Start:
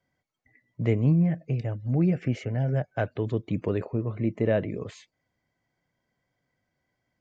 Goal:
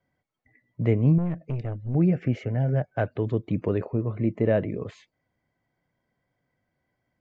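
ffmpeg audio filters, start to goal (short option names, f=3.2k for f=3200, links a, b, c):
-filter_complex "[0:a]lowpass=f=2.2k:p=1,asettb=1/sr,asplit=3[a][b][c];[a]atrim=end=1.184[d];[b]atrim=start=1.18:end=1.95,asetpts=PTS-STARTPTS,afade=t=in:d=0.004:c=qsin,afade=t=out:st=0.766:d=0.004:c=qsin,aeval=exprs='(tanh(20*val(0)+0.45)-tanh(0.45))/20':c=same[e];[c]atrim=start=1.946[f];[d][e]acrossfade=d=0.004:c1=hsin:c2=qsin[g];[g][f]acrossfade=d=0.004:c1=qsin:c2=hsin,volume=2dB"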